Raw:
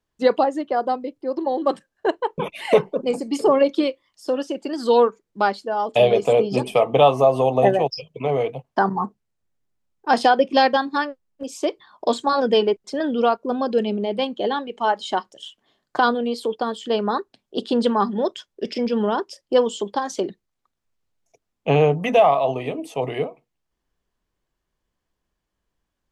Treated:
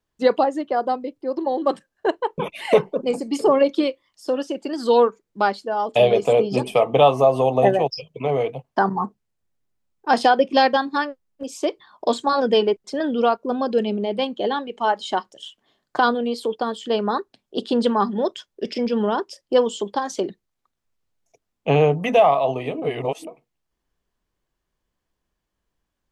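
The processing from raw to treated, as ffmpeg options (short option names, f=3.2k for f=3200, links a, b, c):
-filter_complex "[0:a]asplit=3[a][b][c];[a]atrim=end=22.822[d];[b]atrim=start=22.818:end=23.272,asetpts=PTS-STARTPTS,areverse[e];[c]atrim=start=23.268[f];[d][e]acrossfade=d=0.004:c1=hsin:c2=hsin[g];[g][f]acrossfade=d=0.004:c1=hsin:c2=hsin"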